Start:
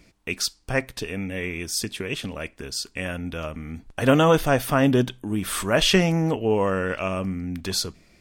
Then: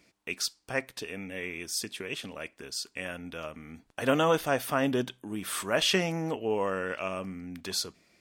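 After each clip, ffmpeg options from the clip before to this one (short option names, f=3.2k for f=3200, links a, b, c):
-af "highpass=f=310:p=1,volume=-5.5dB"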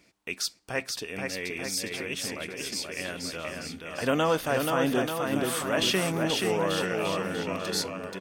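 -filter_complex "[0:a]asplit=2[a][b];[b]alimiter=limit=-21dB:level=0:latency=1,volume=-2dB[c];[a][c]amix=inputs=2:normalize=0,aecho=1:1:480|888|1235|1530|1780:0.631|0.398|0.251|0.158|0.1,volume=-3.5dB"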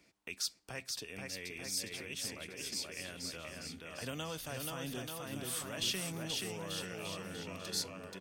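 -filter_complex "[0:a]acrossover=split=140|3000[a][b][c];[b]acompressor=threshold=-43dB:ratio=2.5[d];[a][d][c]amix=inputs=3:normalize=0,volume=-5.5dB"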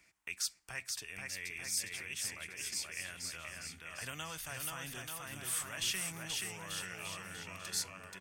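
-af "equalizer=f=125:t=o:w=1:g=-3,equalizer=f=250:t=o:w=1:g=-10,equalizer=f=500:t=o:w=1:g=-9,equalizer=f=2k:t=o:w=1:g=5,equalizer=f=4k:t=o:w=1:g=-6,equalizer=f=8k:t=o:w=1:g=4,volume=1dB"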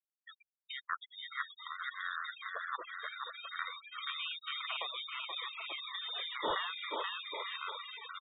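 -filter_complex "[0:a]acrossover=split=1600[a][b];[b]adelay=620[c];[a][c]amix=inputs=2:normalize=0,lowpass=f=3.2k:t=q:w=0.5098,lowpass=f=3.2k:t=q:w=0.6013,lowpass=f=3.2k:t=q:w=0.9,lowpass=f=3.2k:t=q:w=2.563,afreqshift=-3800,afftfilt=real='re*gte(hypot(re,im),0.00891)':imag='im*gte(hypot(re,im),0.00891)':win_size=1024:overlap=0.75,volume=7.5dB"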